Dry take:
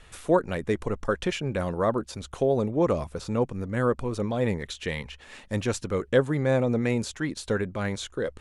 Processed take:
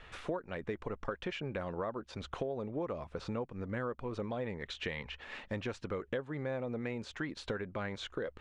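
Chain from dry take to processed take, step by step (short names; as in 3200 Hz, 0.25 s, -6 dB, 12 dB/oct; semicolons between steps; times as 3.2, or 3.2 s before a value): LPF 3100 Hz 12 dB/oct; low shelf 360 Hz -6.5 dB; compressor 6:1, threshold -37 dBFS, peak gain reduction 18 dB; gain +2 dB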